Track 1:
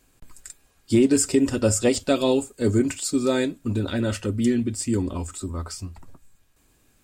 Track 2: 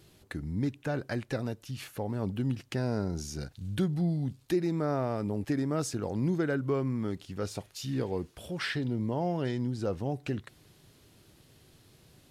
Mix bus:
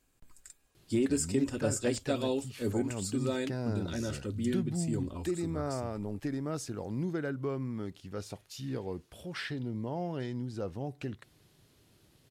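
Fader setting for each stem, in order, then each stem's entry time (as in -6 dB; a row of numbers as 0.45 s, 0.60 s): -11.0 dB, -5.0 dB; 0.00 s, 0.75 s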